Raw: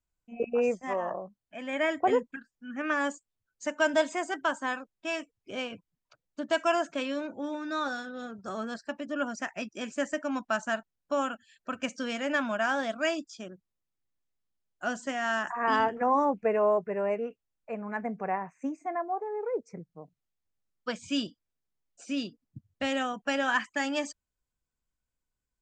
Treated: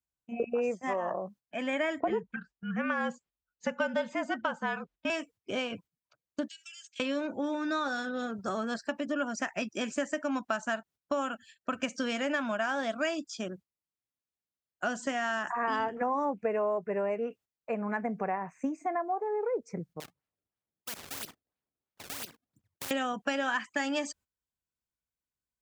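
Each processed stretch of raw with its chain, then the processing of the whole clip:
0:02.00–0:05.10: low-pass filter 3,900 Hz + frequency shifter −47 Hz
0:06.48–0:07.00: inverse Chebyshev high-pass filter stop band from 1,100 Hz, stop band 50 dB + comb filter 3.8 ms, depth 46% + downward compressor 12 to 1, threshold −50 dBFS
0:20.00–0:22.91: output level in coarse steps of 18 dB + sample-and-hold swept by an LFO 26×, swing 160% 3 Hz + every bin compressed towards the loudest bin 4 to 1
whole clip: high-pass filter 60 Hz; noise gate −55 dBFS, range −13 dB; downward compressor 4 to 1, threshold −35 dBFS; level +6 dB

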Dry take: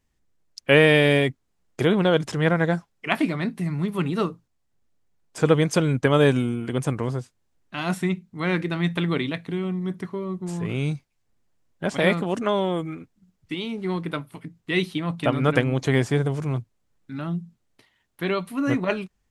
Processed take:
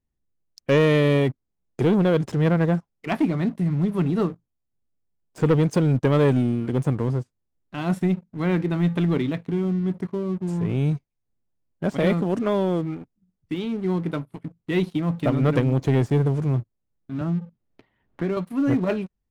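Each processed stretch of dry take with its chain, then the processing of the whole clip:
0:17.21–0:18.37: low-pass filter 3,300 Hz + multiband upward and downward compressor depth 70%
whole clip: tilt shelving filter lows +6 dB, about 890 Hz; leveller curve on the samples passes 2; level −9 dB

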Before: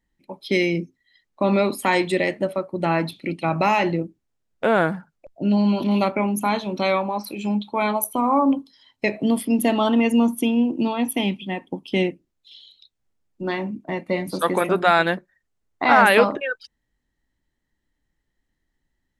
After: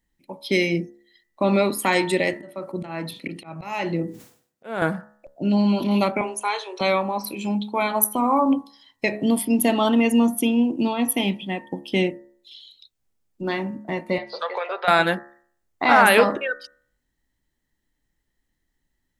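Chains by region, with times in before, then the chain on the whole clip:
0:02.33–0:04.82: high-pass filter 110 Hz 24 dB per octave + volume swells 392 ms + level that may fall only so fast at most 120 dB per second
0:06.21–0:06.81: Chebyshev band-pass filter 390–9,900 Hz, order 5 + parametric band 620 Hz −12.5 dB 0.28 octaves
0:14.18–0:14.88: Chebyshev band-pass filter 480–4,700 Hz, order 4 + downward compressor 3 to 1, threshold −23 dBFS
whole clip: high-shelf EQ 7,100 Hz +8 dB; hum removal 70.2 Hz, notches 28

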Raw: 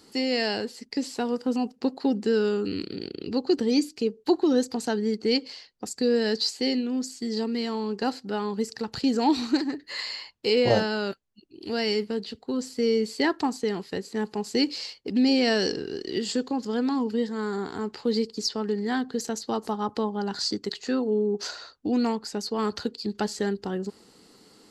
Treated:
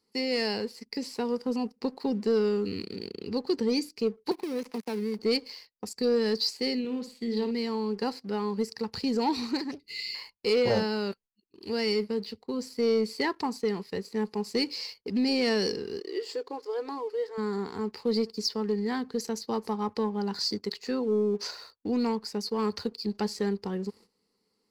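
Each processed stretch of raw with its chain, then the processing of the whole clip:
0:04.31–0:05.19: gap after every zero crossing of 0.19 ms + Butterworth high-pass 170 Hz + downward compressor 3 to 1, threshold −27 dBFS
0:06.79–0:07.51: high shelf with overshoot 4,400 Hz −7 dB, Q 3 + flutter between parallel walls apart 9.6 metres, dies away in 0.36 s
0:09.71–0:10.15: linear-phase brick-wall band-stop 470–2,000 Hz + comb filter 1.1 ms, depth 34% + highs frequency-modulated by the lows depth 0.27 ms
0:16.00–0:17.38: linear-phase brick-wall high-pass 280 Hz + high-shelf EQ 2,200 Hz −8 dB
whole clip: noise gate −49 dBFS, range −13 dB; EQ curve with evenly spaced ripples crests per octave 0.87, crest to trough 7 dB; leveller curve on the samples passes 1; level −7.5 dB

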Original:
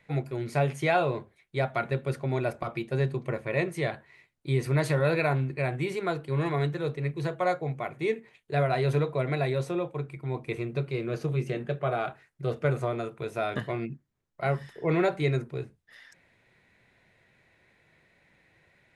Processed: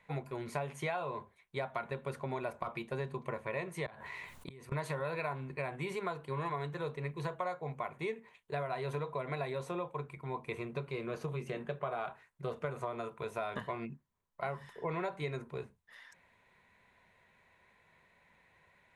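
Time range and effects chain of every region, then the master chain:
0:03.86–0:04.72: gate with flip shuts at −24 dBFS, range −38 dB + envelope flattener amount 70%
whole clip: thirty-one-band graphic EQ 125 Hz −9 dB, 315 Hz −9 dB, 1,000 Hz +11 dB, 5,000 Hz −5 dB; downward compressor, threshold −30 dBFS; level −3.5 dB

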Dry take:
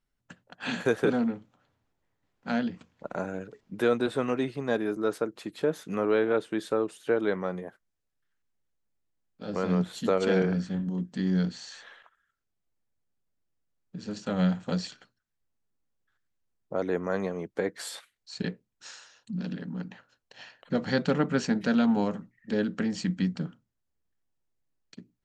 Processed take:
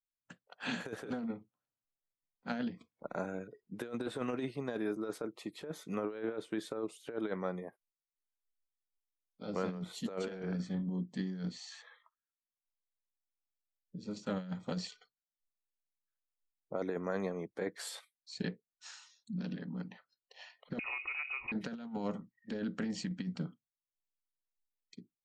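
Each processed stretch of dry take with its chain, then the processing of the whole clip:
0:11.82–0:14.64: notch filter 720 Hz, Q 10 + one half of a high-frequency compander decoder only
0:20.79–0:21.52: low-shelf EQ 77 Hz +11 dB + downward compressor 5 to 1, threshold −31 dBFS + voice inversion scrambler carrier 2,700 Hz
whole clip: noise reduction from a noise print of the clip's start 21 dB; parametric band 83 Hz −5.5 dB 0.61 octaves; compressor whose output falls as the input rises −28 dBFS, ratio −0.5; level −7.5 dB

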